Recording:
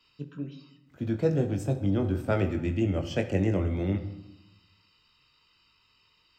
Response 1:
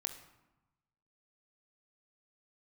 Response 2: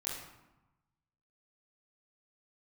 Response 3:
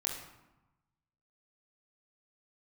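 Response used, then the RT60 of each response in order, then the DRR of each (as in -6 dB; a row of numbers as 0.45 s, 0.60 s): 1; 1.0 s, 1.0 s, 1.0 s; 4.5 dB, -9.0 dB, -2.5 dB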